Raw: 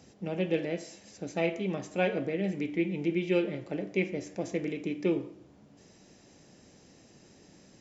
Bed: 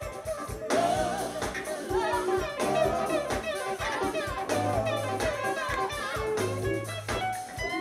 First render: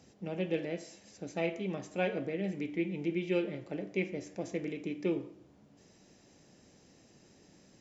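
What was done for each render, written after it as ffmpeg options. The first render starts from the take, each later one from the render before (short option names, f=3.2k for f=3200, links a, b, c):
-af "volume=-4dB"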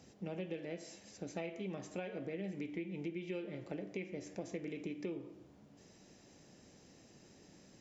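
-af "alimiter=limit=-23.5dB:level=0:latency=1:release=343,acompressor=threshold=-39dB:ratio=4"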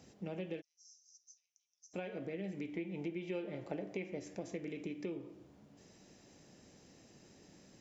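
-filter_complex "[0:a]asplit=3[a][b][c];[a]afade=t=out:st=0.6:d=0.02[d];[b]asuperpass=centerf=5900:order=4:qfactor=5.7,afade=t=in:st=0.6:d=0.02,afade=t=out:st=1.93:d=0.02[e];[c]afade=t=in:st=1.93:d=0.02[f];[d][e][f]amix=inputs=3:normalize=0,asettb=1/sr,asplit=3[g][h][i];[g]atrim=end=2.754[j];[h]atrim=start=2.75:end=4.19,asetpts=PTS-STARTPTS,afade=t=in:d=0.004:c=qsin,afade=t=out:st=1.436:d=0.004:c=qsin,equalizer=f=790:w=1.2:g=6[k];[i]atrim=start=4.186[l];[j][k]acrossfade=d=0.004:c1=hsin:c2=qsin[m];[m][l]acrossfade=d=0.004:c1=qsin:c2=hsin"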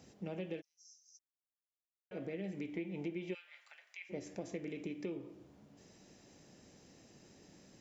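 -filter_complex "[0:a]asplit=3[a][b][c];[a]afade=t=out:st=3.33:d=0.02[d];[b]highpass=f=1.4k:w=0.5412,highpass=f=1.4k:w=1.3066,afade=t=in:st=3.33:d=0.02,afade=t=out:st=4.09:d=0.02[e];[c]afade=t=in:st=4.09:d=0.02[f];[d][e][f]amix=inputs=3:normalize=0,asplit=3[g][h][i];[g]atrim=end=1.19,asetpts=PTS-STARTPTS,afade=t=out:st=1.186:d=0.004:c=hsin[j];[h]atrim=start=1.19:end=2.11,asetpts=PTS-STARTPTS,volume=0[k];[i]atrim=start=2.11,asetpts=PTS-STARTPTS,afade=t=in:d=0.004:c=hsin[l];[j][k][l]concat=n=3:v=0:a=1"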